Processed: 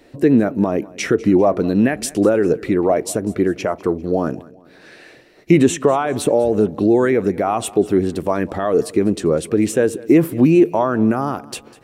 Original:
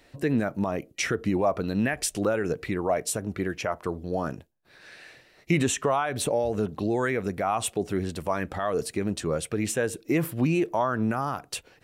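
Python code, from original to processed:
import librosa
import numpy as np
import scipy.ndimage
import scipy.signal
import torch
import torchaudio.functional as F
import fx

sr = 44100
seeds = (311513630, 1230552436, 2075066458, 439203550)

p1 = fx.peak_eq(x, sr, hz=330.0, db=11.0, octaves=1.8)
p2 = p1 + fx.echo_feedback(p1, sr, ms=199, feedback_pct=42, wet_db=-21.0, dry=0)
y = p2 * librosa.db_to_amplitude(3.0)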